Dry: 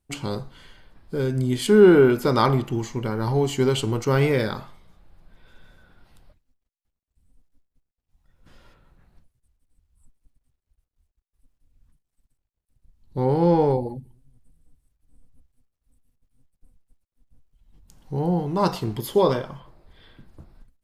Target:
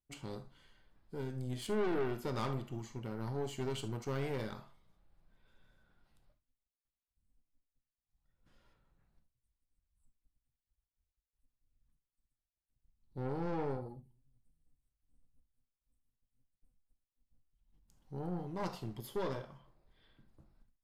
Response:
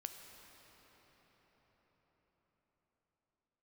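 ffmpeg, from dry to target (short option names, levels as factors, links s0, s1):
-filter_complex "[0:a]aeval=exprs='(tanh(7.94*val(0)+0.6)-tanh(0.6))/7.94':c=same[s0];[1:a]atrim=start_sample=2205,atrim=end_sample=6174,asetrate=74970,aresample=44100[s1];[s0][s1]afir=irnorm=-1:irlink=0,volume=0.596"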